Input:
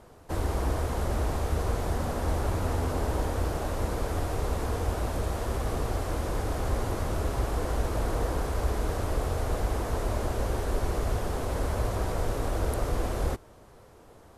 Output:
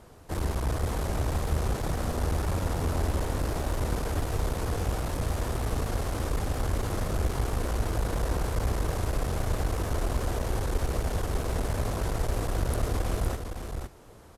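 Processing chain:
parametric band 670 Hz −4 dB 2.7 octaves
asymmetric clip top −34.5 dBFS
on a send: single-tap delay 511 ms −6.5 dB
on the sum: level +3 dB

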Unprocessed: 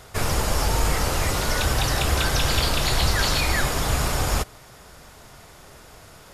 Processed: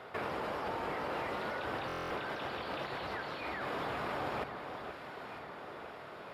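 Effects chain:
high-pass filter 280 Hz 12 dB per octave
high-shelf EQ 11,000 Hz +6.5 dB
compressor whose output falls as the input rises −31 dBFS, ratio −1
high-frequency loss of the air 440 metres
delay that swaps between a low-pass and a high-pass 476 ms, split 1,400 Hz, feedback 73%, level −7 dB
buffer that repeats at 0:01.87, samples 1,024, times 9
level −3.5 dB

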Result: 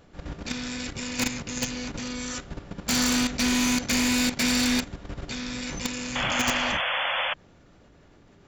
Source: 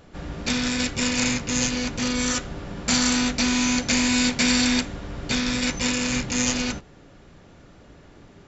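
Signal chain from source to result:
output level in coarse steps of 11 dB
wave folding −17.5 dBFS
sound drawn into the spectrogram noise, 0:06.15–0:07.34, 490–3,500 Hz −27 dBFS

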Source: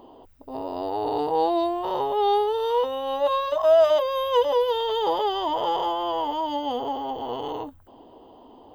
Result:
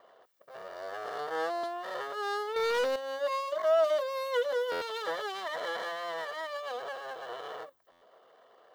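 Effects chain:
lower of the sound and its delayed copy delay 1.7 ms
high-pass filter 450 Hz 12 dB per octave
notch filter 2,500 Hz, Q 6.8
0:02.56–0:02.96: leveller curve on the samples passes 3
buffer that repeats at 0:01.53/0:04.71/0:07.91, samples 512, times 8
level −7 dB

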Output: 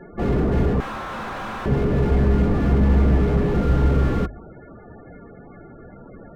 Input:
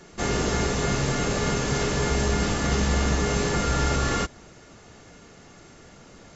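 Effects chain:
low-pass filter 2,300 Hz 12 dB per octave
mains-hum notches 50/100/150 Hz
spectral peaks only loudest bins 32
0:00.80–0:01.66: ring modulation 1,200 Hz
slew-rate limiting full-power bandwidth 14 Hz
level +8.5 dB

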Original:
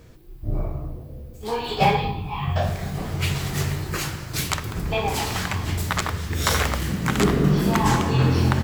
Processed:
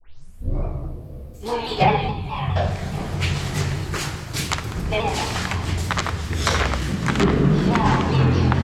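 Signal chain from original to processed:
turntable start at the beginning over 0.57 s
pitch-shifted copies added −7 semitones −17 dB
treble cut that deepens with the level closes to 2,700 Hz, closed at −12.5 dBFS
feedback echo with a high-pass in the loop 560 ms, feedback 81%, level −20 dB
pitch modulation by a square or saw wave saw down 4.8 Hz, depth 100 cents
level +1.5 dB

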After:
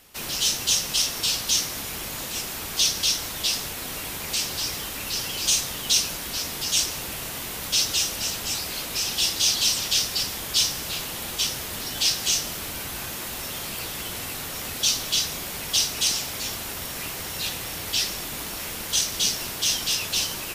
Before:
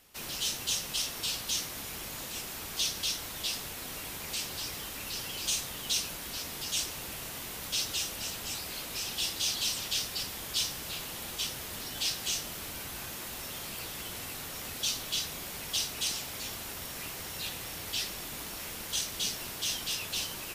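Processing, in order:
dynamic equaliser 5,600 Hz, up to +4 dB, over −44 dBFS, Q 2
level +7.5 dB

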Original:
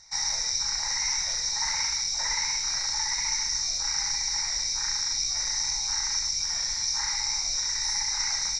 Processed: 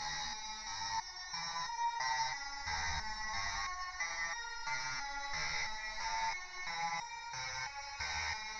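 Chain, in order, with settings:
high-frequency loss of the air 280 metres
extreme stretch with random phases 44×, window 0.05 s, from 0:01.59
step-sequenced resonator 3 Hz 77–470 Hz
level +7.5 dB

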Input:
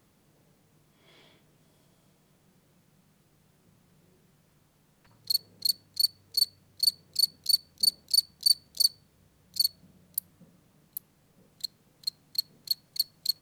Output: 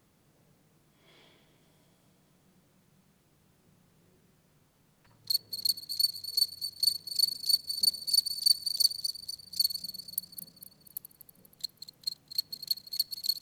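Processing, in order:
feedback delay that plays each chunk backwards 121 ms, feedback 70%, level −10 dB
level −2 dB

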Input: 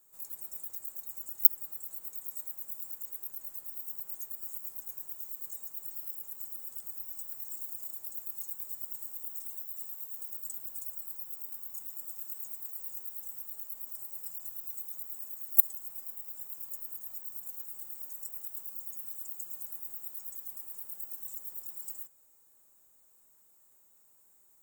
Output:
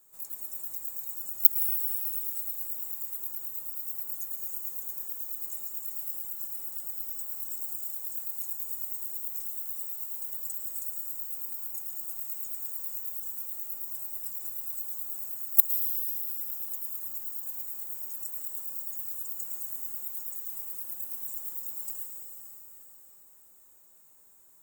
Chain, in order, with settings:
in parallel at −7 dB: hard clipping −17 dBFS, distortion −7 dB
on the sum: dense smooth reverb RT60 5 s, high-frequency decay 0.8×, pre-delay 95 ms, DRR 2 dB

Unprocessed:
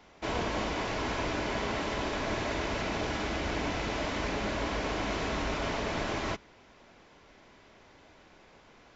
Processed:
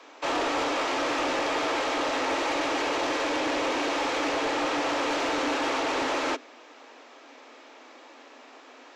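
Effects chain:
frequency shifter +240 Hz
soft clipping −29 dBFS, distortion −15 dB
level +7.5 dB

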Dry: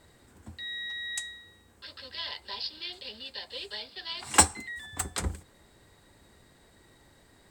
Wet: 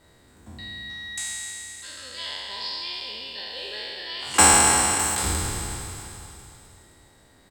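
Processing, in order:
peak hold with a decay on every bin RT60 3.00 s
repeating echo 261 ms, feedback 60%, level −16 dB
level −1 dB

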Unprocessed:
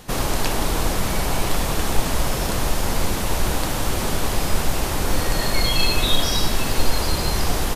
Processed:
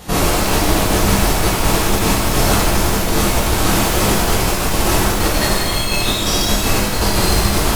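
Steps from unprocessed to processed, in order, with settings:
compressor whose output falls as the input rises −22 dBFS, ratio −1
reverb with rising layers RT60 1.1 s, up +12 semitones, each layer −8 dB, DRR −6.5 dB

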